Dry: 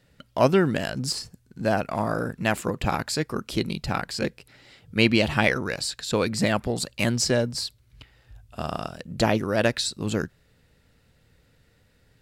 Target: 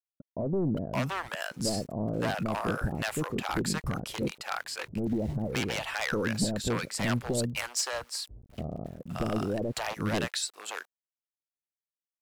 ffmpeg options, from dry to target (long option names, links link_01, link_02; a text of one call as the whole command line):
ffmpeg -i in.wav -filter_complex "[0:a]equalizer=frequency=4400:width_type=o:width=0.88:gain=-5.5,alimiter=limit=-12.5dB:level=0:latency=1:release=76,aeval=exprs='0.112*(abs(mod(val(0)/0.112+3,4)-2)-1)':channel_layout=same,acontrast=73,aeval=exprs='val(0)*gte(abs(val(0)),0.0075)':channel_layout=same,acrossover=split=620[link_01][link_02];[link_02]adelay=570[link_03];[link_01][link_03]amix=inputs=2:normalize=0,volume=-8dB" out.wav